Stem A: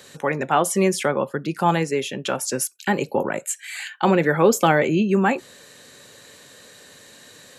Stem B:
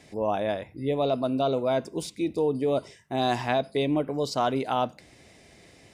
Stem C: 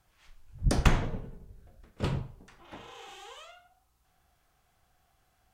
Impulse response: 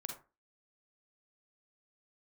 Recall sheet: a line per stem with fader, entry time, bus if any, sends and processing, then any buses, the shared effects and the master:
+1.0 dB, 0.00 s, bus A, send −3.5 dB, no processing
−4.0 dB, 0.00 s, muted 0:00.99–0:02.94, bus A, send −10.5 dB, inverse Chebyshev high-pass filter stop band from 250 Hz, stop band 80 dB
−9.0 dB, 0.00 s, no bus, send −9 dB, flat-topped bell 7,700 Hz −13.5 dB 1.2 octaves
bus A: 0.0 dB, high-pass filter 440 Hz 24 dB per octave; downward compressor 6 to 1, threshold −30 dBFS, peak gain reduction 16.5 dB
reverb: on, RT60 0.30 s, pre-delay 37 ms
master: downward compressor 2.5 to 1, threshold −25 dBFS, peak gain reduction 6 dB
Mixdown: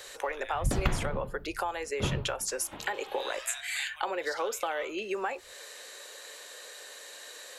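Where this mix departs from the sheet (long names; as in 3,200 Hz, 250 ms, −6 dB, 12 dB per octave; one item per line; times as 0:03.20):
stem A: send off
stem B: send −10.5 dB → −4.5 dB
stem C −9.0 dB → −0.5 dB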